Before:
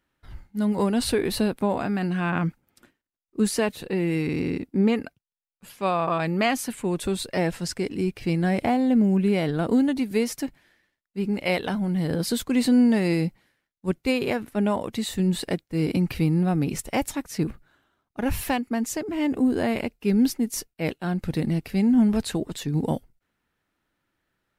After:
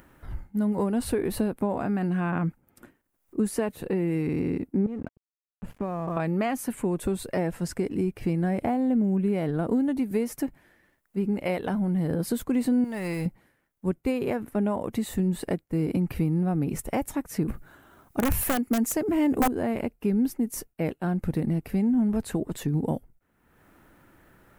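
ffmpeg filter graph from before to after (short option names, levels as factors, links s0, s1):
-filter_complex "[0:a]asettb=1/sr,asplit=3[s0][s1][s2];[s0]atrim=end=4.864[s3];[s1]atrim=start=4.86:end=6.17,asetpts=PTS-STARTPTS,afade=t=in:d=0.004:c=qsin,afade=t=out:st=1.306:d=0.004:c=qsin,aemphasis=mode=reproduction:type=riaa,acompressor=threshold=0.0316:ratio=5:attack=3.2:release=140:knee=1:detection=peak,aeval=exprs='sgn(val(0))*max(abs(val(0))-0.00299,0)':c=same[s4];[s2]atrim=start=6.166[s5];[s3][s4]acrossfade=d=0.004:c1=hsin:c2=qsin[s6];[s6][s5]acrossfade=d=0.004:c1=qsin:c2=hsin,asettb=1/sr,asplit=3[s7][s8][s9];[s7]atrim=end=12.844[s10];[s8]atrim=start=12.84:end=13.26,asetpts=PTS-STARTPTS,afade=t=in:d=0.004:c=qsin,afade=t=out:st=0.416:d=0.004:c=qsin,aeval=exprs='val(0)+0.5*0.0112*sgn(val(0))':c=same,equalizer=f=270:t=o:w=2.2:g=-13.5[s11];[s9]atrim=start=13.256[s12];[s10][s11]acrossfade=d=0.004:c1=hsin:c2=qsin[s13];[s13][s12]acrossfade=d=0.004:c1=qsin:c2=hsin,asettb=1/sr,asplit=3[s14][s15][s16];[s14]atrim=end=17.484[s17];[s15]atrim=start=17.48:end=19.48,asetpts=PTS-STARTPTS,afade=t=in:d=0.004:c=qsin,afade=t=out:st=1.996:d=0.004:c=qsin,highshelf=f=3900:g=6.5,acontrast=72,aeval=exprs='(mod(2.99*val(0)+1,2)-1)/2.99':c=same[s18];[s16]atrim=start=19.476[s19];[s17][s18]acrossfade=d=0.004:c1=hsin:c2=qsin[s20];[s20][s19]acrossfade=d=0.004:c1=qsin:c2=hsin,acompressor=threshold=0.0251:ratio=2.5,equalizer=f=4200:w=0.66:g=-13,acompressor=mode=upward:threshold=0.00398:ratio=2.5,volume=2"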